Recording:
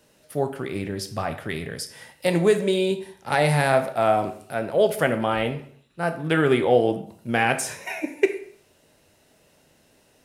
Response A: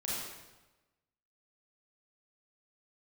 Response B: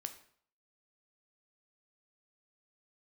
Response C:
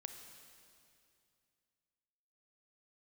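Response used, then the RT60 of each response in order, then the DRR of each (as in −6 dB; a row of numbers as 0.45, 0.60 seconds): B; 1.1, 0.55, 2.5 seconds; −7.5, 7.5, 6.0 decibels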